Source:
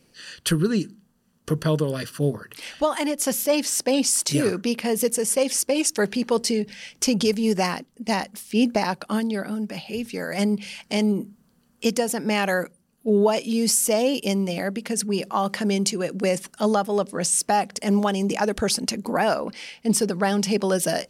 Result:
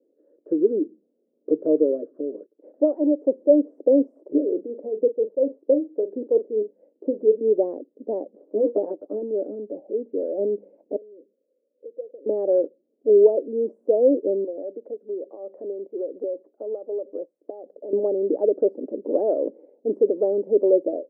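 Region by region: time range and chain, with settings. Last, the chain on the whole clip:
2.20–2.74 s: bass shelf 220 Hz +4.5 dB + gate -39 dBFS, range -19 dB + compression 3:1, threshold -30 dBFS
4.28–7.41 s: tremolo triangle 4.4 Hz, depth 75% + distance through air 260 m + doubling 41 ms -12 dB
8.37–9.22 s: comb filter that takes the minimum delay 9.9 ms + low-pass 7.6 kHz
10.96–12.26 s: bass shelf 170 Hz +11.5 dB + compression 2.5:1, threshold -35 dBFS + vowel filter e
14.44–17.93 s: high-pass 690 Hz 6 dB/octave + compression 10:1, threshold -28 dBFS
whole clip: elliptic band-pass 290–580 Hz, stop band 80 dB; level rider gain up to 7 dB

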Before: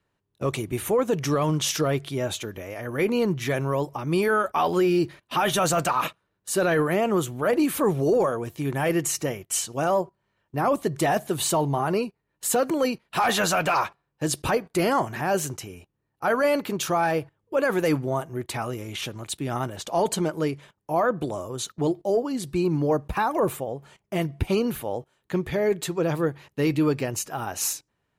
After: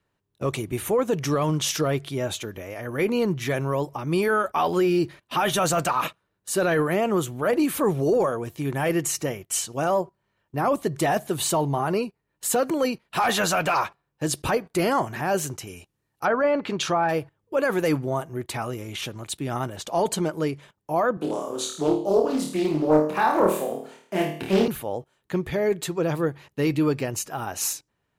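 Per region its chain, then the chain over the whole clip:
15.67–17.09 s: low-pass that closes with the level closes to 1.4 kHz, closed at -19.5 dBFS + treble shelf 2.4 kHz +10 dB
21.17–24.68 s: high-pass 180 Hz 24 dB/octave + flutter echo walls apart 4.5 m, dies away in 0.55 s + loudspeaker Doppler distortion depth 0.31 ms
whole clip: none

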